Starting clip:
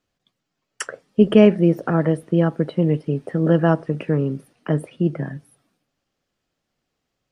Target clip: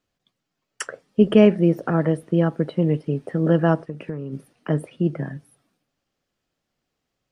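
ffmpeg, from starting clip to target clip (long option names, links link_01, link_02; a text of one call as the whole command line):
ffmpeg -i in.wav -filter_complex "[0:a]asplit=3[link_01][link_02][link_03];[link_01]afade=type=out:start_time=3.84:duration=0.02[link_04];[link_02]acompressor=threshold=-26dB:ratio=6,afade=type=in:start_time=3.84:duration=0.02,afade=type=out:start_time=4.32:duration=0.02[link_05];[link_03]afade=type=in:start_time=4.32:duration=0.02[link_06];[link_04][link_05][link_06]amix=inputs=3:normalize=0,volume=-1.5dB" out.wav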